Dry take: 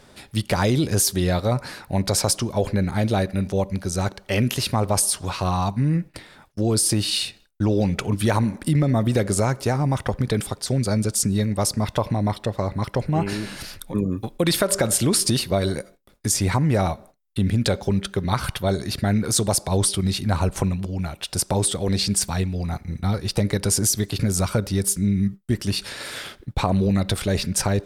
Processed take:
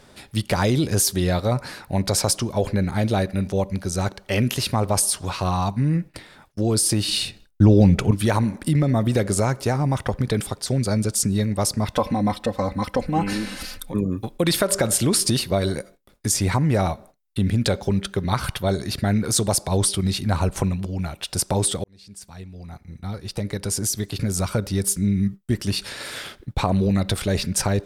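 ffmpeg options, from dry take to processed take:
-filter_complex "[0:a]asettb=1/sr,asplit=3[a][b][c];[a]atrim=end=7.084[d];[b]atrim=start=7.08:end=8.11,asetpts=PTS-STARTPTS,afade=t=in:d=0.004:c=qsin,afade=t=out:st=1.026:d=0.004:c=qsin,lowshelf=f=360:g=9.5[e];[c]atrim=start=8.106[f];[d][e]acrossfade=d=0.004:c1=hsin:c2=qsin[g];[g][f]acrossfade=d=0.004:c1=qsin:c2=hsin,asettb=1/sr,asplit=3[h][i][j];[h]atrim=end=11.954[k];[i]atrim=start=11.95:end=13.9,asetpts=PTS-STARTPTS,afade=t=in:d=0.004:c=qsin,afade=t=out:st=1.946:d=0.004:c=qsin,aecho=1:1:3.9:0.77,atrim=end_sample=85995[l];[j]atrim=start=13.896[m];[k][l]acrossfade=d=0.004:c1=hsin:c2=qsin[n];[n][m]acrossfade=d=0.004:c1=qsin:c2=hsin,asplit=2[o][p];[o]atrim=end=21.84,asetpts=PTS-STARTPTS,afade=t=out:st=21.836:d=0.004:c=hsin[q];[p]atrim=start=21.84,asetpts=PTS-STARTPTS,afade=t=in:d=3.15[r];[q][r]concat=n=2:v=0:a=1"

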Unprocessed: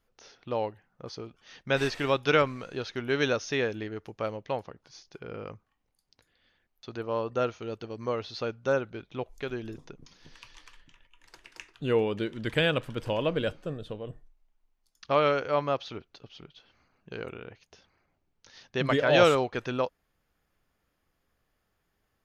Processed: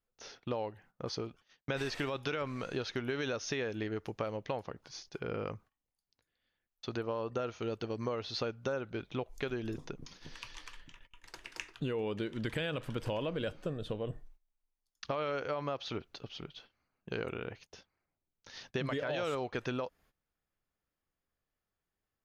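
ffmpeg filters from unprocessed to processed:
-filter_complex "[0:a]asplit=2[a][b];[a]atrim=end=1.68,asetpts=PTS-STARTPTS,afade=t=out:st=1.18:d=0.5[c];[b]atrim=start=1.68,asetpts=PTS-STARTPTS,afade=t=in:d=0.004:c=hsin[d];[c][d]concat=n=2:v=0:a=1,agate=range=-17dB:threshold=-58dB:ratio=16:detection=peak,alimiter=limit=-21dB:level=0:latency=1:release=38,acompressor=threshold=-36dB:ratio=6,volume=3.5dB"

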